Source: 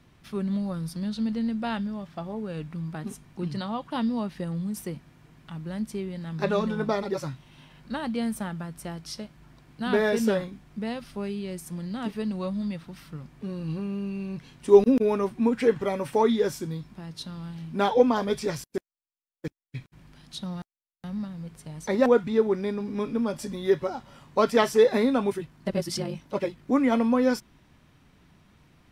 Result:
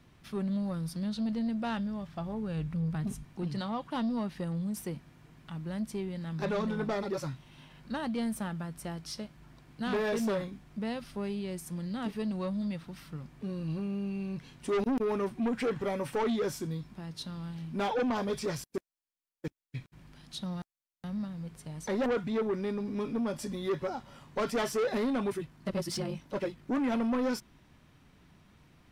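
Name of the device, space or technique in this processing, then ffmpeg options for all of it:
saturation between pre-emphasis and de-emphasis: -filter_complex "[0:a]asettb=1/sr,asplit=3[link_01][link_02][link_03];[link_01]atrim=end=1.684[link_04];[link_02]atrim=start=1.68:end=3.25,asetpts=PTS-STARTPTS,afade=type=in:duration=0.004:curve=qsin,afade=type=out:start_time=1.566:duration=0.004:curve=qsin,asubboost=boost=9.5:cutoff=170[link_05];[link_03]atrim=start=3.246[link_06];[link_04][link_05]acrossfade=duration=0.004:curve1=hsin:curve2=qsin[link_07];[link_07][link_06]acrossfade=duration=0.004:curve1=qsin:curve2=hsin,highshelf=frequency=6700:gain=10,asoftclip=type=tanh:threshold=-24dB,highshelf=frequency=6700:gain=-10,volume=-2dB"

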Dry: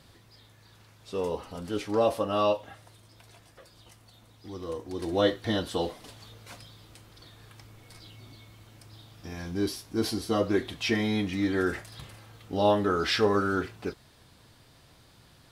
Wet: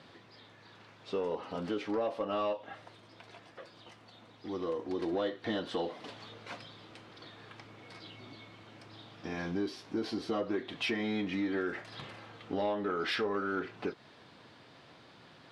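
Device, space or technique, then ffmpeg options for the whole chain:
AM radio: -af "highpass=200,lowpass=3400,acompressor=threshold=-35dB:ratio=4,asoftclip=type=tanh:threshold=-27.5dB,volume=4.5dB"

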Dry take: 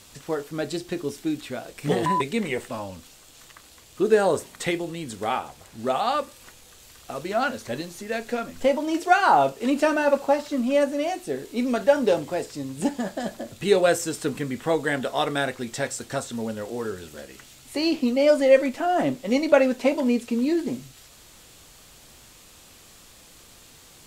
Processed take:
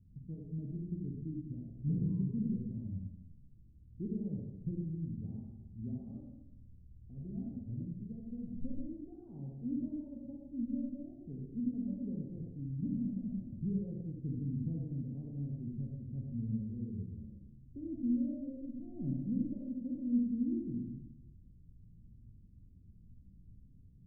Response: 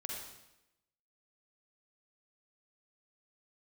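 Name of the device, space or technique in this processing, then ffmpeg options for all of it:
club heard from the street: -filter_complex "[0:a]alimiter=limit=-12.5dB:level=0:latency=1:release=392,lowpass=frequency=190:width=0.5412,lowpass=frequency=190:width=1.3066[link_01];[1:a]atrim=start_sample=2205[link_02];[link_01][link_02]afir=irnorm=-1:irlink=0,volume=2dB"

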